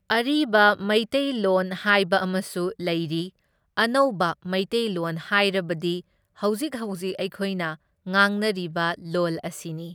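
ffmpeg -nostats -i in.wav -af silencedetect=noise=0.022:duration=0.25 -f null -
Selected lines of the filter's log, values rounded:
silence_start: 3.28
silence_end: 3.77 | silence_duration: 0.49
silence_start: 6.00
silence_end: 6.43 | silence_duration: 0.43
silence_start: 7.74
silence_end: 8.07 | silence_duration: 0.32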